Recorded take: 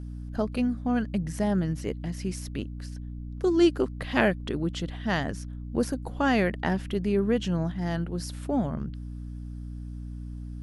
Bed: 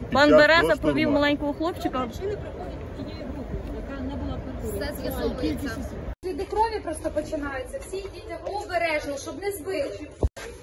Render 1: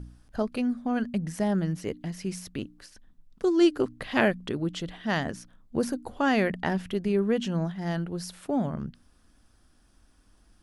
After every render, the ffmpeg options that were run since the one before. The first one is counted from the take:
ffmpeg -i in.wav -af "bandreject=frequency=60:width_type=h:width=4,bandreject=frequency=120:width_type=h:width=4,bandreject=frequency=180:width_type=h:width=4,bandreject=frequency=240:width_type=h:width=4,bandreject=frequency=300:width_type=h:width=4" out.wav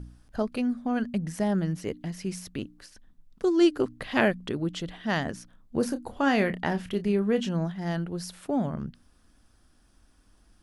ffmpeg -i in.wav -filter_complex "[0:a]asettb=1/sr,asplit=3[link_01][link_02][link_03];[link_01]atrim=end=5.764[link_04];[link_02]atrim=start=5.76:end=7.49,asetpts=PTS-STARTPTS,afade=type=in:duration=0.004:curve=qsin,afade=type=out:start_time=1.726:duration=0.004:curve=qsin,asplit=2[link_05][link_06];[link_06]adelay=29,volume=-11dB[link_07];[link_05][link_07]amix=inputs=2:normalize=0,atrim=end_sample=76293[link_08];[link_03]atrim=start=7.486[link_09];[link_04][link_08]acrossfade=duration=0.004:curve1=hsin:curve2=qsin[link_10];[link_10][link_09]acrossfade=duration=0.004:curve1=qsin:curve2=hsin" out.wav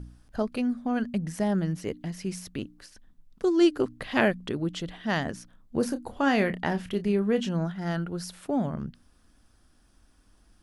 ffmpeg -i in.wav -filter_complex "[0:a]asettb=1/sr,asplit=3[link_01][link_02][link_03];[link_01]atrim=end=7.594[link_04];[link_02]atrim=start=7.59:end=8.24,asetpts=PTS-STARTPTS,afade=type=in:duration=0.004:curve=qsin,afade=type=out:start_time=0.646:duration=0.004:curve=qsin,equalizer=frequency=1400:width=7:gain=10[link_05];[link_03]atrim=start=8.236[link_06];[link_04][link_05]acrossfade=duration=0.004:curve1=hsin:curve2=qsin[link_07];[link_07][link_06]acrossfade=duration=0.004:curve1=qsin:curve2=hsin" out.wav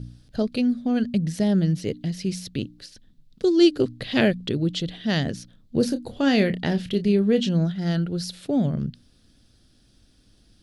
ffmpeg -i in.wav -af "equalizer=frequency=125:width_type=o:width=1:gain=10,equalizer=frequency=250:width_type=o:width=1:gain=3,equalizer=frequency=500:width_type=o:width=1:gain=5,equalizer=frequency=1000:width_type=o:width=1:gain=-9,equalizer=frequency=4000:width_type=o:width=1:gain=12" out.wav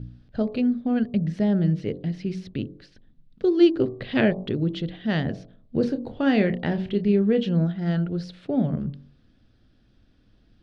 ffmpeg -i in.wav -af "lowpass=2400,bandreject=frequency=47.42:width_type=h:width=4,bandreject=frequency=94.84:width_type=h:width=4,bandreject=frequency=142.26:width_type=h:width=4,bandreject=frequency=189.68:width_type=h:width=4,bandreject=frequency=237.1:width_type=h:width=4,bandreject=frequency=284.52:width_type=h:width=4,bandreject=frequency=331.94:width_type=h:width=4,bandreject=frequency=379.36:width_type=h:width=4,bandreject=frequency=426.78:width_type=h:width=4,bandreject=frequency=474.2:width_type=h:width=4,bandreject=frequency=521.62:width_type=h:width=4,bandreject=frequency=569.04:width_type=h:width=4,bandreject=frequency=616.46:width_type=h:width=4,bandreject=frequency=663.88:width_type=h:width=4,bandreject=frequency=711.3:width_type=h:width=4,bandreject=frequency=758.72:width_type=h:width=4,bandreject=frequency=806.14:width_type=h:width=4,bandreject=frequency=853.56:width_type=h:width=4,bandreject=frequency=900.98:width_type=h:width=4,bandreject=frequency=948.4:width_type=h:width=4,bandreject=frequency=995.82:width_type=h:width=4,bandreject=frequency=1043.24:width_type=h:width=4,bandreject=frequency=1090.66:width_type=h:width=4,bandreject=frequency=1138.08:width_type=h:width=4,bandreject=frequency=1185.5:width_type=h:width=4" out.wav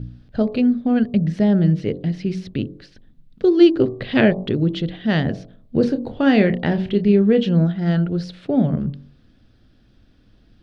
ffmpeg -i in.wav -af "volume=5.5dB,alimiter=limit=-2dB:level=0:latency=1" out.wav

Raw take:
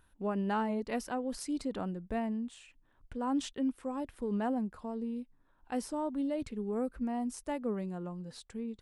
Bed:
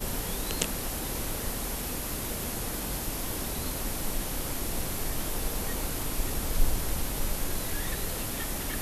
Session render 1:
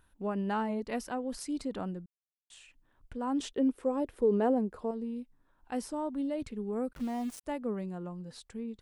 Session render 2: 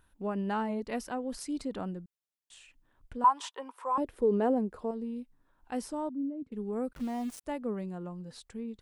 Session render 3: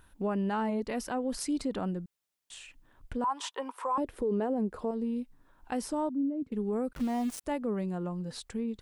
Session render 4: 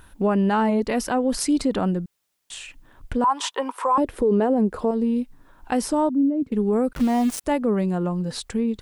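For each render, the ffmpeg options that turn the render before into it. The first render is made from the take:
ffmpeg -i in.wav -filter_complex "[0:a]asettb=1/sr,asplit=3[link_01][link_02][link_03];[link_01]atrim=end=3.404[link_04];[link_02]atrim=start=3.4:end=4.91,asetpts=PTS-STARTPTS,afade=type=in:duration=0.004:curve=qsin,afade=type=out:start_time=1.506:duration=0.004:curve=qsin,equalizer=frequency=440:width=1.4:gain=12[link_05];[link_03]atrim=start=4.906[link_06];[link_04][link_05]acrossfade=duration=0.004:curve1=hsin:curve2=qsin[link_07];[link_07][link_06]acrossfade=duration=0.004:curve1=qsin:curve2=hsin,asettb=1/sr,asplit=3[link_08][link_09][link_10];[link_08]atrim=end=6.934[link_11];[link_09]atrim=start=6.93:end=7.44,asetpts=PTS-STARTPTS,afade=type=in:duration=0.004:curve=qsin,afade=type=out:start_time=0.506:duration=0.004:curve=qsin,aeval=exprs='val(0)*gte(abs(val(0)),0.00631)':channel_layout=same[link_12];[link_10]atrim=start=7.436[link_13];[link_11][link_12]acrossfade=duration=0.004:curve1=hsin:curve2=qsin[link_14];[link_14][link_13]acrossfade=duration=0.004:curve1=qsin:curve2=hsin,asplit=3[link_15][link_16][link_17];[link_15]atrim=end=2.06,asetpts=PTS-STARTPTS,afade=type=out:start_time=2.056:duration=0.004:curve=hsin[link_18];[link_16]atrim=start=2.06:end=2.5,asetpts=PTS-STARTPTS,volume=0[link_19];[link_17]atrim=start=2.5,asetpts=PTS-STARTPTS,afade=type=in:duration=0.004:curve=hsin[link_20];[link_18][link_19][link_20]concat=n=3:v=0:a=1" out.wav
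ffmpeg -i in.wav -filter_complex "[0:a]asettb=1/sr,asplit=3[link_01][link_02][link_03];[link_01]atrim=end=3.244[link_04];[link_02]atrim=start=3.24:end=3.98,asetpts=PTS-STARTPTS,afade=type=in:duration=0.004:curve=qsin,afade=type=out:start_time=0.736:duration=0.004:curve=qsin,highpass=frequency=970:width_type=q:width=9.3[link_05];[link_03]atrim=start=3.976[link_06];[link_04][link_05]acrossfade=duration=0.004:curve1=hsin:curve2=qsin[link_07];[link_07][link_06]acrossfade=duration=0.004:curve1=qsin:curve2=hsin,asettb=1/sr,asplit=3[link_08][link_09][link_10];[link_08]atrim=end=6.094[link_11];[link_09]atrim=start=6.09:end=6.52,asetpts=PTS-STARTPTS,afade=type=in:duration=0.004:curve=qsin,afade=type=out:start_time=0.426:duration=0.004:curve=qsin,bandpass=frequency=270:width_type=q:width=2.9[link_12];[link_10]atrim=start=6.516[link_13];[link_11][link_12]acrossfade=duration=0.004:curve1=hsin:curve2=qsin[link_14];[link_14][link_13]acrossfade=duration=0.004:curve1=qsin:curve2=hsin" out.wav
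ffmpeg -i in.wav -filter_complex "[0:a]asplit=2[link_01][link_02];[link_02]acompressor=threshold=-39dB:ratio=6,volume=2dB[link_03];[link_01][link_03]amix=inputs=2:normalize=0,alimiter=limit=-23.5dB:level=0:latency=1:release=34" out.wav
ffmpeg -i in.wav -af "volume=10.5dB" out.wav

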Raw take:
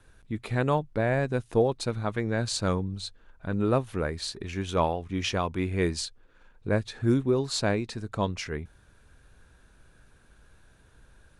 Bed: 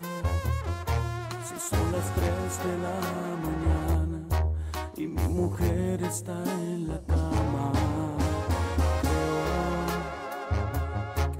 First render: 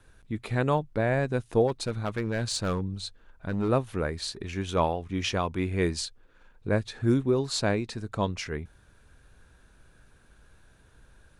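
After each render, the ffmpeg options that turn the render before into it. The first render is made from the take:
ffmpeg -i in.wav -filter_complex "[0:a]asplit=3[link_01][link_02][link_03];[link_01]afade=type=out:start_time=1.67:duration=0.02[link_04];[link_02]asoftclip=type=hard:threshold=-22.5dB,afade=type=in:start_time=1.67:duration=0.02,afade=type=out:start_time=3.68:duration=0.02[link_05];[link_03]afade=type=in:start_time=3.68:duration=0.02[link_06];[link_04][link_05][link_06]amix=inputs=3:normalize=0" out.wav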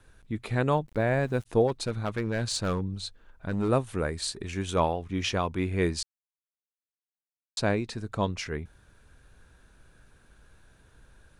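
ffmpeg -i in.wav -filter_complex "[0:a]asplit=3[link_01][link_02][link_03];[link_01]afade=type=out:start_time=0.86:duration=0.02[link_04];[link_02]aeval=exprs='val(0)*gte(abs(val(0)),0.00316)':channel_layout=same,afade=type=in:start_time=0.86:duration=0.02,afade=type=out:start_time=1.45:duration=0.02[link_05];[link_03]afade=type=in:start_time=1.45:duration=0.02[link_06];[link_04][link_05][link_06]amix=inputs=3:normalize=0,asettb=1/sr,asplit=3[link_07][link_08][link_09];[link_07]atrim=end=3.514[link_10];[link_08]atrim=start=3.51:end=4.8,asetpts=PTS-STARTPTS,afade=type=in:duration=0.004:curve=qsin,afade=type=out:start_time=1.286:duration=0.004:curve=qsin,equalizer=frequency=8400:width_type=o:width=0.57:gain=7.5[link_11];[link_09]atrim=start=4.796[link_12];[link_10][link_11]acrossfade=duration=0.004:curve1=hsin:curve2=qsin[link_13];[link_13][link_12]acrossfade=duration=0.004:curve1=qsin:curve2=hsin,asplit=3[link_14][link_15][link_16];[link_14]atrim=end=6.03,asetpts=PTS-STARTPTS,afade=type=out:start_time=6.026:duration=0.004:curve=hsin[link_17];[link_15]atrim=start=6.03:end=7.57,asetpts=PTS-STARTPTS,volume=0[link_18];[link_16]atrim=start=7.57,asetpts=PTS-STARTPTS,afade=type=in:duration=0.004:curve=hsin[link_19];[link_17][link_18][link_19]concat=n=3:v=0:a=1" out.wav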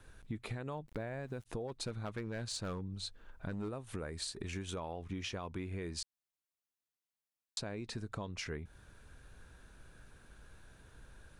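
ffmpeg -i in.wav -af "alimiter=limit=-21.5dB:level=0:latency=1:release=183,acompressor=threshold=-38dB:ratio=6" out.wav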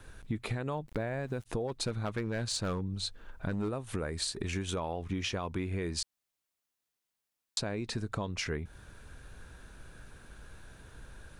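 ffmpeg -i in.wav -af "volume=6.5dB" out.wav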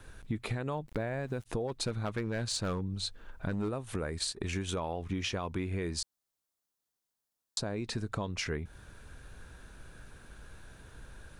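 ffmpeg -i in.wav -filter_complex "[0:a]asettb=1/sr,asplit=3[link_01][link_02][link_03];[link_01]atrim=end=3.944[link_04];[link_02]atrim=start=3.94:end=4.53,asetpts=PTS-STARTPTS,afade=type=in:duration=0.004:curve=qsin,afade=type=out:start_time=0.586:duration=0.004:curve=qsin,agate=range=-10dB:threshold=-40dB:ratio=16:release=100:detection=peak[link_05];[link_03]atrim=start=4.526[link_06];[link_04][link_05]acrossfade=duration=0.004:curve1=hsin:curve2=qsin[link_07];[link_07][link_06]acrossfade=duration=0.004:curve1=qsin:curve2=hsin,asettb=1/sr,asplit=3[link_08][link_09][link_10];[link_08]atrim=end=5.964[link_11];[link_09]atrim=start=5.96:end=7.76,asetpts=PTS-STARTPTS,afade=type=in:duration=0.004:curve=qsin,afade=type=out:start_time=1.796:duration=0.004:curve=qsin,equalizer=frequency=2400:width=1.5:gain=-7.5[link_12];[link_10]atrim=start=7.756[link_13];[link_11][link_12]acrossfade=duration=0.004:curve1=hsin:curve2=qsin[link_14];[link_14][link_13]acrossfade=duration=0.004:curve1=qsin:curve2=hsin" out.wav

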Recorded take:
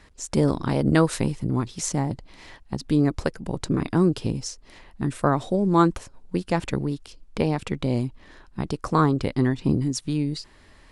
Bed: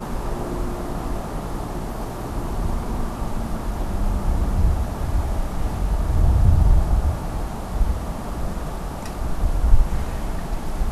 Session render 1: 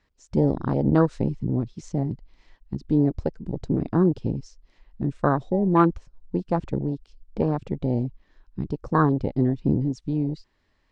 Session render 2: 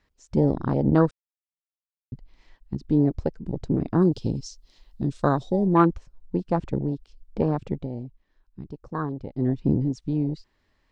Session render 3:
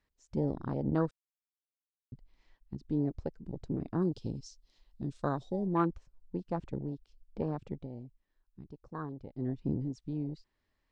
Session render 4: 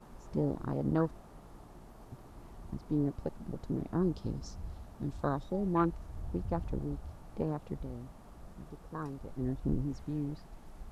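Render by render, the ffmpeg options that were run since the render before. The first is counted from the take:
ffmpeg -i in.wav -af "lowpass=frequency=6700:width=0.5412,lowpass=frequency=6700:width=1.3066,afwtdn=0.0562" out.wav
ffmpeg -i in.wav -filter_complex "[0:a]asettb=1/sr,asplit=3[link_01][link_02][link_03];[link_01]atrim=end=4.024[link_04];[link_02]atrim=start=4.02:end=5.66,asetpts=PTS-STARTPTS,afade=type=in:duration=0.004:curve=qsin,afade=type=out:start_time=1.636:duration=0.004:curve=qsin,highshelf=frequency=2900:width_type=q:width=1.5:gain=9.5[link_05];[link_03]atrim=start=5.656[link_06];[link_04][link_05]acrossfade=duration=0.004:curve1=hsin:curve2=qsin[link_07];[link_07][link_06]acrossfade=duration=0.004:curve1=qsin:curve2=hsin,asplit=5[link_08][link_09][link_10][link_11][link_12];[link_08]atrim=end=1.11,asetpts=PTS-STARTPTS,afade=type=out:start_time=1.106:duration=0.004:curve=hsin[link_13];[link_09]atrim=start=1.11:end=2.12,asetpts=PTS-STARTPTS,volume=0[link_14];[link_10]atrim=start=2.12:end=7.89,asetpts=PTS-STARTPTS,afade=type=in:duration=0.004:curve=hsin,afade=type=out:start_time=5.62:duration=0.15:silence=0.334965[link_15];[link_11]atrim=start=7.89:end=9.35,asetpts=PTS-STARTPTS,volume=-9.5dB[link_16];[link_12]atrim=start=9.35,asetpts=PTS-STARTPTS,afade=type=in:duration=0.15:silence=0.334965[link_17];[link_13][link_14][link_15][link_16][link_17]concat=n=5:v=0:a=1" out.wav
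ffmpeg -i in.wav -af "volume=-11dB" out.wav
ffmpeg -i in.wav -i bed.wav -filter_complex "[1:a]volume=-24.5dB[link_01];[0:a][link_01]amix=inputs=2:normalize=0" out.wav

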